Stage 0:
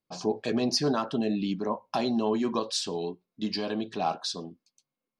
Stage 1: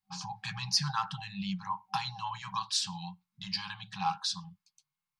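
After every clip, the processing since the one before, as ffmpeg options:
-af "afftfilt=real='re*(1-between(b*sr/4096,200,770))':imag='im*(1-between(b*sr/4096,200,770))':win_size=4096:overlap=0.75"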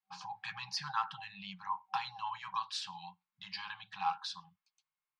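-filter_complex "[0:a]acrossover=split=550 3500:gain=0.158 1 0.178[a][b][c];[a][b][c]amix=inputs=3:normalize=0,volume=-1dB"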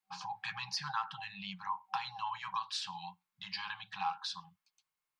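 -af "acompressor=threshold=-38dB:ratio=2,volume=3dB"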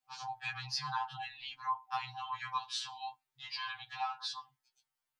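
-af "afftfilt=real='re*2.45*eq(mod(b,6),0)':imag='im*2.45*eq(mod(b,6),0)':win_size=2048:overlap=0.75,volume=2.5dB"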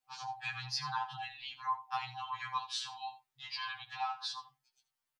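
-af "aecho=1:1:81:0.188"

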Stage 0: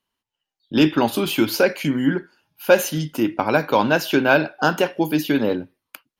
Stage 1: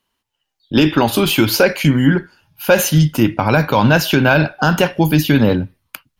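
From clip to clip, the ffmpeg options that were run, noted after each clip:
-af "asubboost=boost=8.5:cutoff=120,alimiter=level_in=9dB:limit=-1dB:release=50:level=0:latency=1,volume=-1dB"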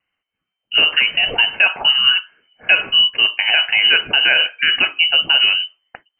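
-af "lowpass=f=2.6k:t=q:w=0.5098,lowpass=f=2.6k:t=q:w=0.6013,lowpass=f=2.6k:t=q:w=0.9,lowpass=f=2.6k:t=q:w=2.563,afreqshift=-3100,volume=-1.5dB"

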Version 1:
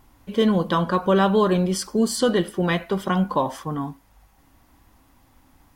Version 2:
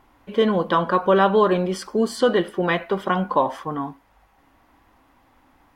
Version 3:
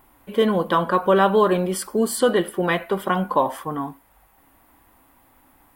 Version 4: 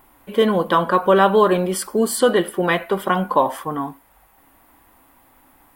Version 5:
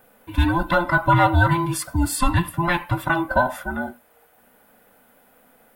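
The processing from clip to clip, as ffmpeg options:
-af "bass=f=250:g=-10,treble=f=4k:g=-13,volume=3.5dB"
-af "aexciter=amount=6:drive=4.2:freq=8.1k"
-af "equalizer=f=69:w=0.34:g=-3,volume=3dB"
-af "afftfilt=real='real(if(between(b,1,1008),(2*floor((b-1)/24)+1)*24-b,b),0)':imag='imag(if(between(b,1,1008),(2*floor((b-1)/24)+1)*24-b,b),0)*if(between(b,1,1008),-1,1)':win_size=2048:overlap=0.75,volume=-2dB"

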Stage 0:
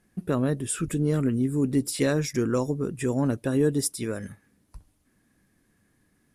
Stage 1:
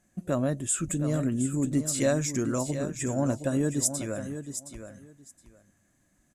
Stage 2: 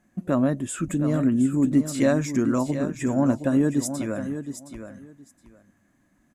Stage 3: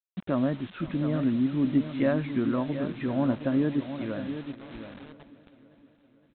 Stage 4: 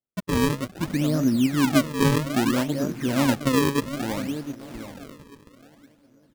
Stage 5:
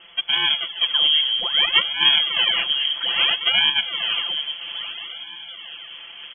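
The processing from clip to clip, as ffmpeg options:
-af "superequalizer=7b=0.501:8b=2:15b=3.55,aecho=1:1:718|1436:0.316|0.0538,volume=-3dB"
-af "equalizer=f=250:t=o:w=1:g=8,equalizer=f=1k:t=o:w=1:g=6,equalizer=f=2k:t=o:w=1:g=3,equalizer=f=8k:t=o:w=1:g=-7"
-af "aresample=8000,acrusher=bits=6:mix=0:aa=0.000001,aresample=44100,aecho=1:1:515|1030|1545|2060|2575:0.119|0.0654|0.036|0.0198|0.0109,volume=-4.5dB"
-af "lowpass=f=2.4k:p=1,acrusher=samples=35:mix=1:aa=0.000001:lfo=1:lforange=56:lforate=0.61,volume=4.5dB"
-af "aeval=exprs='val(0)+0.5*0.015*sgn(val(0))':c=same,aecho=1:1:5.9:0.92,lowpass=f=2.9k:t=q:w=0.5098,lowpass=f=2.9k:t=q:w=0.6013,lowpass=f=2.9k:t=q:w=0.9,lowpass=f=2.9k:t=q:w=2.563,afreqshift=-3400,volume=1dB"

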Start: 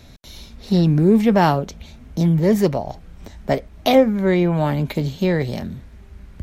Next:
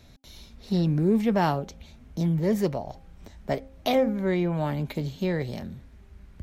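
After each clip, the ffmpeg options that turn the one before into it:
-af "bandreject=f=266.9:t=h:w=4,bandreject=f=533.8:t=h:w=4,bandreject=f=800.7:t=h:w=4,volume=-8dB"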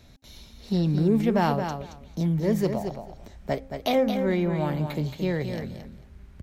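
-af "aecho=1:1:223|446|669:0.422|0.0675|0.0108"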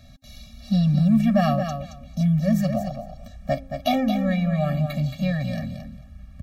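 -af "afftfilt=real='re*eq(mod(floor(b*sr/1024/270),2),0)':imag='im*eq(mod(floor(b*sr/1024/270),2),0)':win_size=1024:overlap=0.75,volume=5dB"

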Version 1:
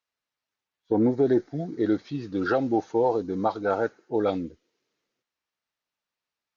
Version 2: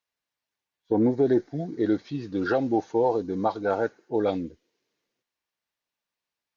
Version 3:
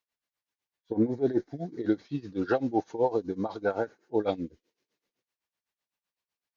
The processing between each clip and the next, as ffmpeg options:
-af "bandreject=f=1.3k:w=11"
-af "tremolo=f=7.9:d=0.87"

